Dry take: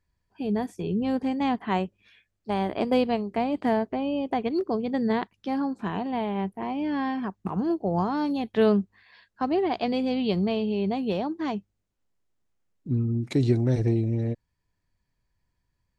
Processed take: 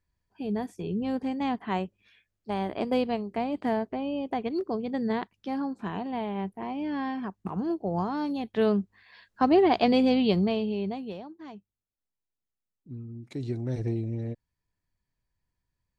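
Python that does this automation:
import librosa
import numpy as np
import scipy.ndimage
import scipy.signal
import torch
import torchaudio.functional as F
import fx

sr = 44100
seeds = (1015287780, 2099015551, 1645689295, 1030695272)

y = fx.gain(x, sr, db=fx.line((8.73, -3.5), (9.47, 4.5), (10.05, 4.5), (10.86, -4.5), (11.29, -14.5), (13.16, -14.5), (13.84, -6.0)))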